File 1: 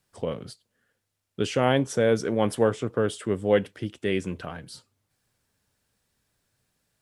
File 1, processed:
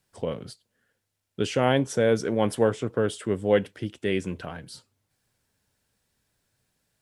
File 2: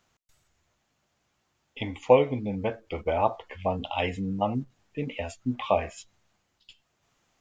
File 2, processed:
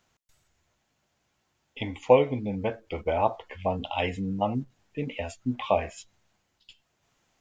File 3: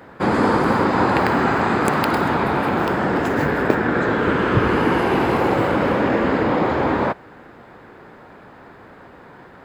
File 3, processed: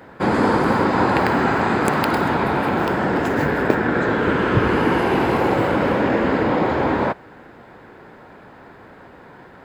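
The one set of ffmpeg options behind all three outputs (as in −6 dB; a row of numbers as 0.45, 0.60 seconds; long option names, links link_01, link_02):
-af "bandreject=frequency=1200:width=18"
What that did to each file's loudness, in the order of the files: 0.0, 0.0, 0.0 LU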